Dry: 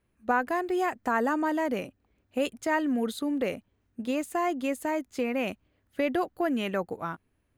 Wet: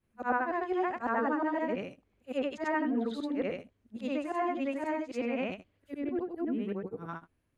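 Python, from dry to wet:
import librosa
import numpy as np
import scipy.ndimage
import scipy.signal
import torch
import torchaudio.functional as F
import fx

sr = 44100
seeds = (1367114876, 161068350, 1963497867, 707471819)

y = fx.frame_reverse(x, sr, frame_ms=204.0)
y = fx.env_lowpass_down(y, sr, base_hz=2300.0, full_db=-27.0)
y = fx.spec_box(y, sr, start_s=5.92, length_s=1.17, low_hz=500.0, high_hz=8200.0, gain_db=-12)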